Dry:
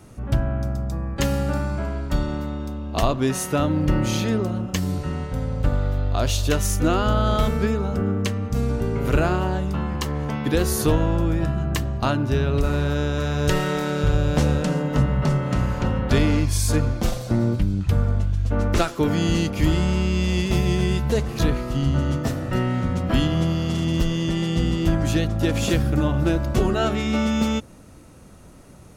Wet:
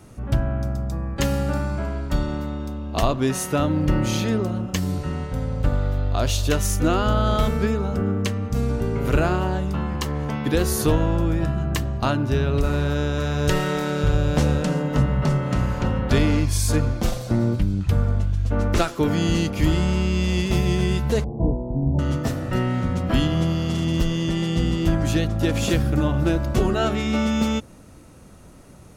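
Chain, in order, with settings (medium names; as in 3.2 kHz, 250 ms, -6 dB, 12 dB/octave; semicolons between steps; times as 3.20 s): 21.24–21.99 s: Chebyshev low-pass 930 Hz, order 6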